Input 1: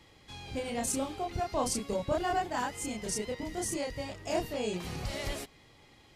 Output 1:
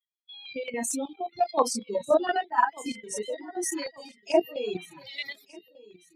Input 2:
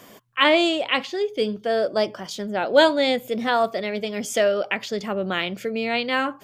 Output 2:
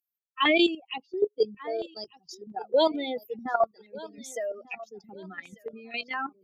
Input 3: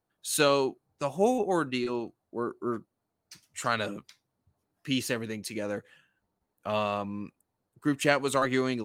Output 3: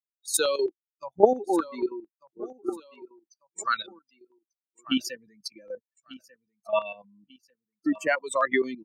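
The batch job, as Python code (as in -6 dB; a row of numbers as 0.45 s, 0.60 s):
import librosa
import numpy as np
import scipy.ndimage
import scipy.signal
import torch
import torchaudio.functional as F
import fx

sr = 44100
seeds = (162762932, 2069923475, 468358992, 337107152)

y = fx.bin_expand(x, sr, power=3.0)
y = scipy.signal.sosfilt(scipy.signal.butter(4, 270.0, 'highpass', fs=sr, output='sos'), y)
y = fx.high_shelf(y, sr, hz=11000.0, db=-11.0)
y = fx.level_steps(y, sr, step_db=12)
y = fx.echo_feedback(y, sr, ms=1193, feedback_pct=31, wet_db=-20)
y = fx.filter_held_notch(y, sr, hz=4.4, low_hz=730.0, high_hz=4800.0)
y = y * 10.0 ** (-30 / 20.0) / np.sqrt(np.mean(np.square(y)))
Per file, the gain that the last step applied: +18.5 dB, +6.0 dB, +15.0 dB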